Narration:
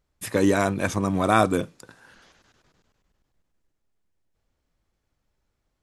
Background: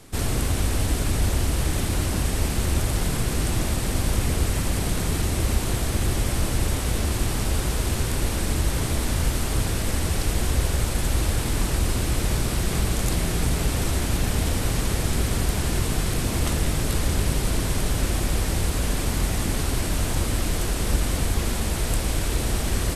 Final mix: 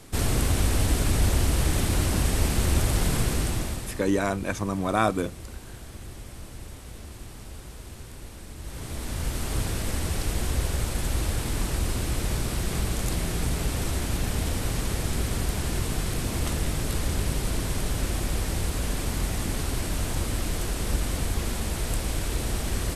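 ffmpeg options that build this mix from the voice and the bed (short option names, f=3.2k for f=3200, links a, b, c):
-filter_complex "[0:a]adelay=3650,volume=-4dB[a];[1:a]volume=13.5dB,afade=t=out:st=3.21:d=0.82:silence=0.133352,afade=t=in:st=8.57:d=0.99:silence=0.211349[b];[a][b]amix=inputs=2:normalize=0"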